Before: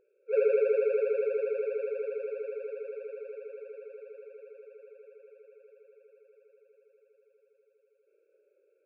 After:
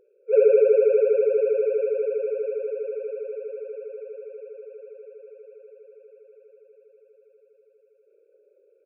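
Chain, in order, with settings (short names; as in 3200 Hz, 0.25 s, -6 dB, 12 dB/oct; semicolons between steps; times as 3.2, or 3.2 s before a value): formant sharpening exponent 1.5; echo 1.034 s -21.5 dB; gain +8.5 dB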